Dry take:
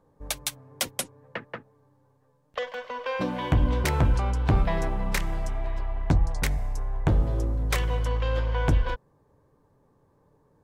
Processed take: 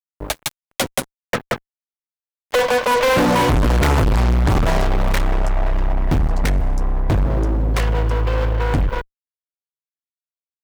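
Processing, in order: Doppler pass-by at 2.65, 6 m/s, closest 4.9 m; high shelf 2500 Hz -11 dB; sample gate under -49.5 dBFS; dynamic EQ 200 Hz, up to -3 dB, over -46 dBFS, Q 2.4; fuzz box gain 42 dB, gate -49 dBFS

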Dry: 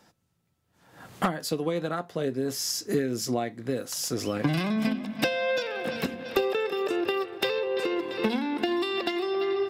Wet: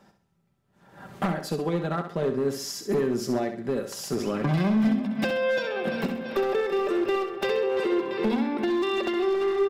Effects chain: high shelf 2500 Hz -11 dB; comb 5.1 ms, depth 49%; in parallel at +1 dB: limiter -20.5 dBFS, peak gain reduction 10 dB; on the sum: overloaded stage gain 16.5 dB; flutter echo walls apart 11.2 m, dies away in 0.47 s; gain -3.5 dB

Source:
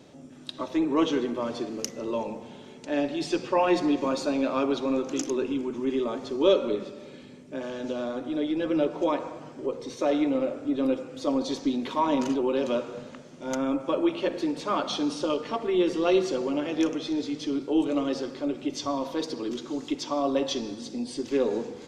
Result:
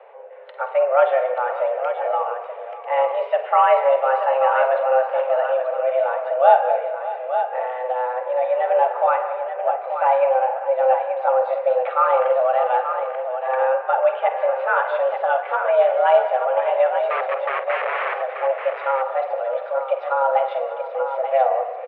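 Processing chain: 17.08–18.15 wrapped overs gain 24.5 dB; tapped delay 49/194/597/883 ms -12.5/-17/-15/-8 dB; mistuned SSB +260 Hz 190–2200 Hz; gain +7 dB

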